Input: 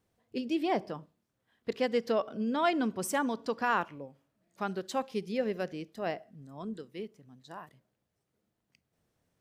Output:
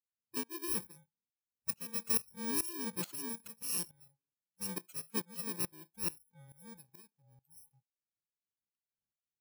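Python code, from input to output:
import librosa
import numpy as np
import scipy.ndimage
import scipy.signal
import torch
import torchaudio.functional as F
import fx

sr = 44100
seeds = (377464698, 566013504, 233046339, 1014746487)

y = fx.bit_reversed(x, sr, seeds[0], block=64)
y = fx.noise_reduce_blind(y, sr, reduce_db=20)
y = fx.tremolo_decay(y, sr, direction='swelling', hz=2.3, depth_db=19)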